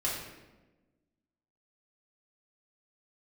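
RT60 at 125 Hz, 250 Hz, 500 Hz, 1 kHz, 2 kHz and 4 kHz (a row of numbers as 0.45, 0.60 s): 1.4, 1.6, 1.3, 1.0, 0.95, 0.75 s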